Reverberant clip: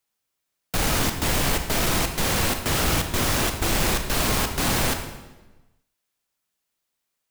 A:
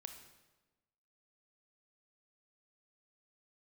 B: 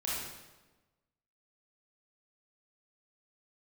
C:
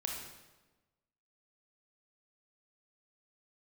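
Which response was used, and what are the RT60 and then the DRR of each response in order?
A; 1.2 s, 1.2 s, 1.2 s; 5.5 dB, -7.5 dB, -0.5 dB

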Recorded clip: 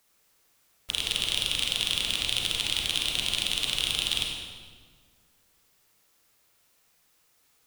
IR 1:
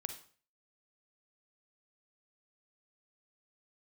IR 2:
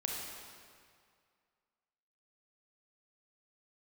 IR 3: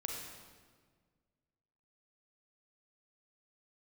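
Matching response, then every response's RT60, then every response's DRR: 3; 0.45 s, 2.1 s, 1.6 s; 7.0 dB, -1.5 dB, 0.0 dB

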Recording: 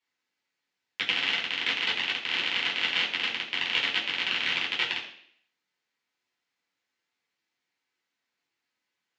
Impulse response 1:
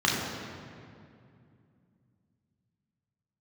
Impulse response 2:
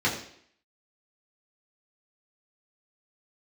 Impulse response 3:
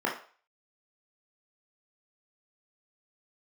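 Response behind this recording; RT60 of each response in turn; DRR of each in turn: 2; 2.4 s, 0.65 s, 0.40 s; -4.5 dB, -6.5 dB, -3.0 dB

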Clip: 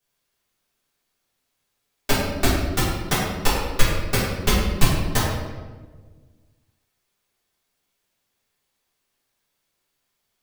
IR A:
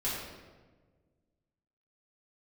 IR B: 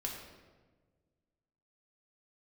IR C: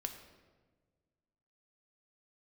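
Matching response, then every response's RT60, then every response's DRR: A; 1.4 s, 1.4 s, 1.5 s; -9.5 dB, -1.5 dB, 5.0 dB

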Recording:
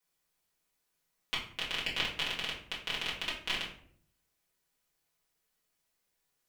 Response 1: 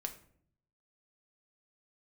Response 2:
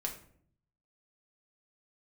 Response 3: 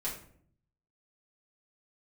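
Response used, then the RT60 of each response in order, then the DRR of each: 3; 0.60 s, 0.60 s, 0.60 s; 4.0 dB, 0.0 dB, -7.5 dB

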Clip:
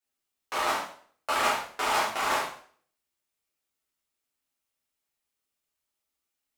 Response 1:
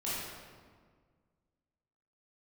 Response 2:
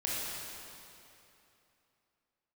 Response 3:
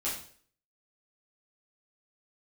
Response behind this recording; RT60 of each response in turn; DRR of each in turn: 3; 1.7 s, 2.9 s, 0.50 s; -10.0 dB, -6.5 dB, -8.5 dB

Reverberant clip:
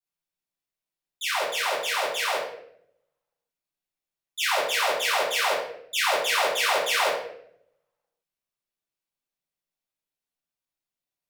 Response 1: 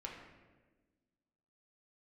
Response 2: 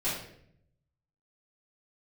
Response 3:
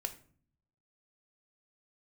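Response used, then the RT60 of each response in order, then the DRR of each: 2; 1.3 s, 0.65 s, 0.50 s; -2.0 dB, -12.0 dB, 7.0 dB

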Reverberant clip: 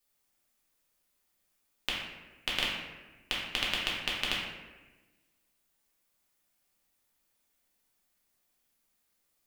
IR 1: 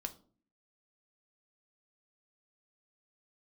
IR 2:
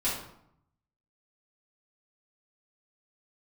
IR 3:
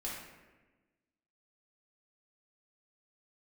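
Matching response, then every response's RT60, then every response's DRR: 3; 0.45 s, 0.75 s, 1.2 s; 6.0 dB, -9.5 dB, -6.0 dB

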